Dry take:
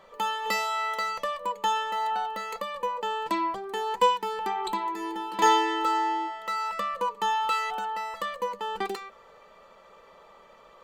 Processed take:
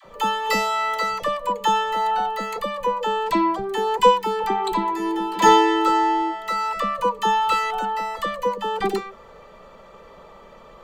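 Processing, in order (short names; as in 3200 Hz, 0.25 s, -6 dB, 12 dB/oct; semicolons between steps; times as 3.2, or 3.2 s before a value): low shelf 330 Hz +12 dB; dispersion lows, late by 52 ms, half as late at 590 Hz; gain +5 dB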